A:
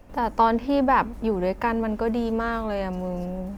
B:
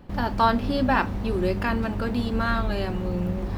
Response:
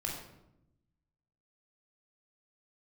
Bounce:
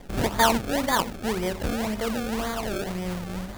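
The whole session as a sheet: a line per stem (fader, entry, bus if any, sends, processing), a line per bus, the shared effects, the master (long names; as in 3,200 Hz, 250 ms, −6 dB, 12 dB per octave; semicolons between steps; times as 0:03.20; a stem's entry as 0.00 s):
−5.5 dB, 0.00 s, send −11.5 dB, no processing
0.0 dB, 0.00 s, send −20.5 dB, spectral envelope flattened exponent 0.6; automatic ducking −15 dB, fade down 1.15 s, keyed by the first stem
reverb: on, RT60 0.85 s, pre-delay 18 ms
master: sample-and-hold swept by an LFO 31×, swing 100% 1.9 Hz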